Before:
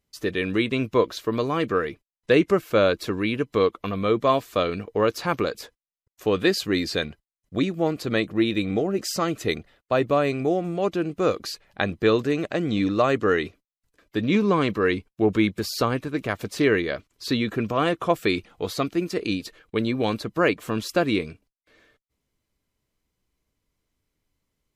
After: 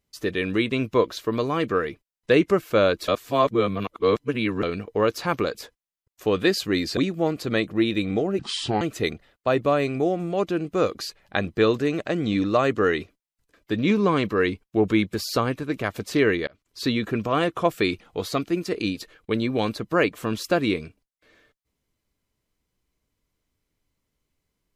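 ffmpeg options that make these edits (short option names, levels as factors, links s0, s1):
-filter_complex "[0:a]asplit=7[s0][s1][s2][s3][s4][s5][s6];[s0]atrim=end=3.082[s7];[s1]atrim=start=3.078:end=4.632,asetpts=PTS-STARTPTS,areverse[s8];[s2]atrim=start=4.628:end=6.972[s9];[s3]atrim=start=7.568:end=8.994[s10];[s4]atrim=start=8.99:end=9.26,asetpts=PTS-STARTPTS,asetrate=28224,aresample=44100[s11];[s5]atrim=start=9.256:end=16.92,asetpts=PTS-STARTPTS,afade=t=out:st=7.66:d=0.004:c=hsin[s12];[s6]atrim=start=16.92,asetpts=PTS-STARTPTS,afade=t=in:d=0.36[s13];[s7][s8]acrossfade=d=0.004:c1=hsin:c2=hsin[s14];[s14][s9]acrossfade=d=0.004:c1=hsin:c2=hsin[s15];[s15][s10]acrossfade=d=0.004:c1=hsin:c2=hsin[s16];[s16][s11]acrossfade=d=0.004:c1=hsin:c2=hsin[s17];[s12][s13]concat=n=2:v=0:a=1[s18];[s17][s18]acrossfade=d=0.004:c1=hsin:c2=hsin"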